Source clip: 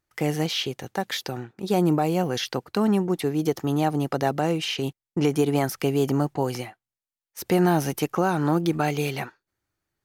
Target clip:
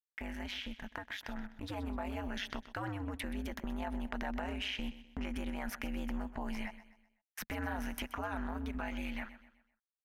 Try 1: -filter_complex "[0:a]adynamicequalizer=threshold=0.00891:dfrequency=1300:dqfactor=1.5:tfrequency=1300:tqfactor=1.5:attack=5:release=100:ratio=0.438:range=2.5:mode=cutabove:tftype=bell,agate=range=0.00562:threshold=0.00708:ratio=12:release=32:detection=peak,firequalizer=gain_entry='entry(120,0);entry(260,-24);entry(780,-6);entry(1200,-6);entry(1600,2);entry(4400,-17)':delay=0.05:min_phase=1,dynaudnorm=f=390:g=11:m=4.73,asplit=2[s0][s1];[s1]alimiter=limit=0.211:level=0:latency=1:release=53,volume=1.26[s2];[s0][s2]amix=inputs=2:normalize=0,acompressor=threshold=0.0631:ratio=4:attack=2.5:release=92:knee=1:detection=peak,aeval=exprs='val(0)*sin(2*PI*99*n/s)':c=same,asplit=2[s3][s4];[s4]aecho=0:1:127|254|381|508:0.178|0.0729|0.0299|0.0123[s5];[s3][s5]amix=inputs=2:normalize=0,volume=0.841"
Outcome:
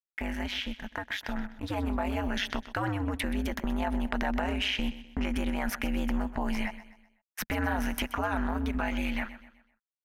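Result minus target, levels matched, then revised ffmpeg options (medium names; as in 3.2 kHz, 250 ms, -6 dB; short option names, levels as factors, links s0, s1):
compression: peak gain reduction -8.5 dB
-filter_complex "[0:a]adynamicequalizer=threshold=0.00891:dfrequency=1300:dqfactor=1.5:tfrequency=1300:tqfactor=1.5:attack=5:release=100:ratio=0.438:range=2.5:mode=cutabove:tftype=bell,agate=range=0.00562:threshold=0.00708:ratio=12:release=32:detection=peak,firequalizer=gain_entry='entry(120,0);entry(260,-24);entry(780,-6);entry(1200,-6);entry(1600,2);entry(4400,-17)':delay=0.05:min_phase=1,dynaudnorm=f=390:g=11:m=4.73,asplit=2[s0][s1];[s1]alimiter=limit=0.211:level=0:latency=1:release=53,volume=1.26[s2];[s0][s2]amix=inputs=2:normalize=0,acompressor=threshold=0.0168:ratio=4:attack=2.5:release=92:knee=1:detection=peak,aeval=exprs='val(0)*sin(2*PI*99*n/s)':c=same,asplit=2[s3][s4];[s4]aecho=0:1:127|254|381|508:0.178|0.0729|0.0299|0.0123[s5];[s3][s5]amix=inputs=2:normalize=0,volume=0.841"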